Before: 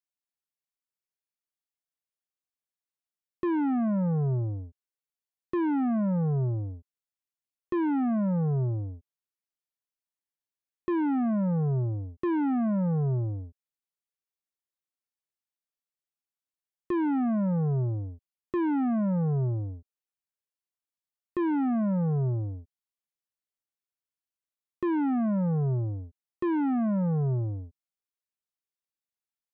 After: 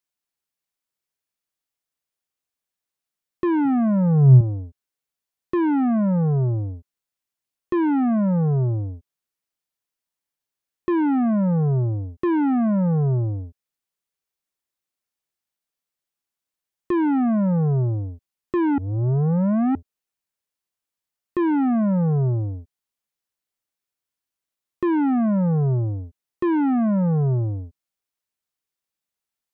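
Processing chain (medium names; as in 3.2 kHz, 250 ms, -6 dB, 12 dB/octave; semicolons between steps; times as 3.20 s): 3.65–4.41 s: peaking EQ 130 Hz +12.5 dB 0.28 oct; 18.78–19.75 s: reverse; trim +6.5 dB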